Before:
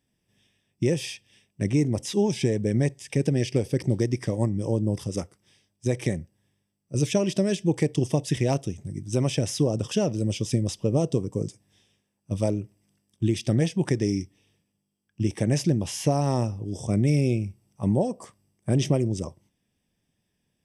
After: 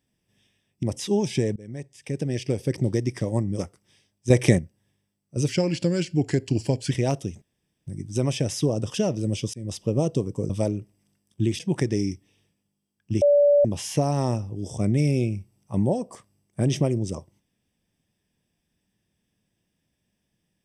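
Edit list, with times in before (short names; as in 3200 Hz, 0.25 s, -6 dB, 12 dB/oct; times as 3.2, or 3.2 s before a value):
0.83–1.89 cut
2.62–3.77 fade in, from -23 dB
4.65–5.17 cut
5.88–6.17 gain +8.5 dB
7.06–8.33 speed 89%
8.84 insert room tone 0.45 s
10.51–10.76 fade in
11.47–12.32 cut
13.42–13.69 cut
15.31–15.74 bleep 578 Hz -13.5 dBFS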